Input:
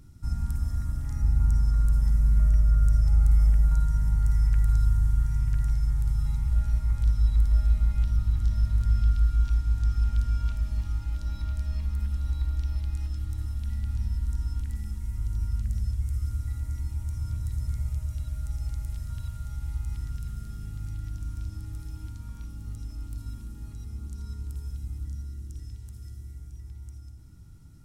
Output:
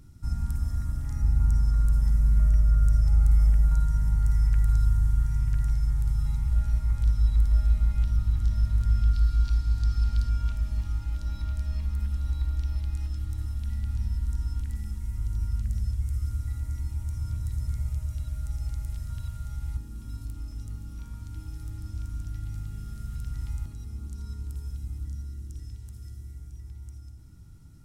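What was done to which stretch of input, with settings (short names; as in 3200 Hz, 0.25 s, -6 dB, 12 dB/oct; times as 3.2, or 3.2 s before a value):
9.13–10.29 bell 4500 Hz +10.5 dB 0.4 oct
19.77–23.66 reverse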